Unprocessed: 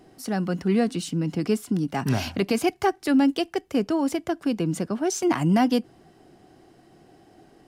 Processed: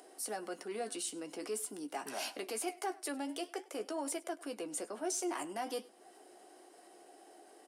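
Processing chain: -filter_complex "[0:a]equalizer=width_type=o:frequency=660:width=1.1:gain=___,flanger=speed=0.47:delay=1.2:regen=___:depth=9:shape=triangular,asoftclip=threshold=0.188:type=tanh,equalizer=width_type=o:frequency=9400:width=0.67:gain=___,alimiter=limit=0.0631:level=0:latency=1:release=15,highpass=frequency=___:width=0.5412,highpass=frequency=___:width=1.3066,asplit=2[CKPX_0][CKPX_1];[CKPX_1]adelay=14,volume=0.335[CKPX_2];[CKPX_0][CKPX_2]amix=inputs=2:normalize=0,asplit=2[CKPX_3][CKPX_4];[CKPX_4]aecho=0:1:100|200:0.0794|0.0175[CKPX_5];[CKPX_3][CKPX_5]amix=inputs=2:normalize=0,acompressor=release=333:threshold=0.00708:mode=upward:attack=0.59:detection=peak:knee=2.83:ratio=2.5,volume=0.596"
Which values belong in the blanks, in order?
3, -82, 14.5, 350, 350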